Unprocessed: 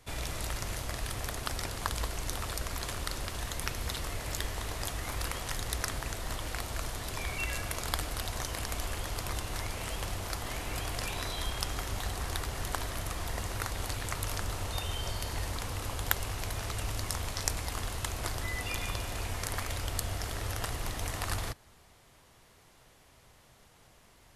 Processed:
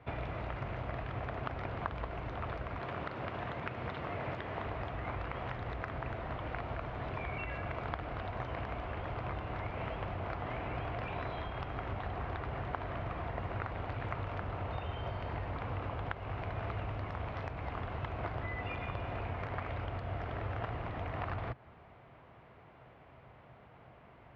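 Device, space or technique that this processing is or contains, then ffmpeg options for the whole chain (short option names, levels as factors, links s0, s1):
bass amplifier: -filter_complex "[0:a]asettb=1/sr,asplit=3[s0][s1][s2];[s0]atrim=end=2.784[s3];[s1]atrim=start=2.78:end=4.66,asetpts=PTS-STARTPTS,afade=t=in:d=0.004:c=qsin,afade=t=out:st=1.876:d=0.004:c=qsin,highpass=110[s4];[s2]atrim=start=4.656[s5];[s3][s4]acrossfade=d=0.004:c1=hsin:c2=qsin[s6];[s6][s5]acrossfade=d=0.004:c1=qsin:c2=hsin,acompressor=threshold=0.0126:ratio=3,highpass=67,equalizer=f=130:t=q:w=4:g=4,equalizer=f=680:t=q:w=4:g=4,equalizer=f=1800:t=q:w=4:g=-4,lowpass=f=2300:w=0.5412,lowpass=f=2300:w=1.3066,volume=1.68"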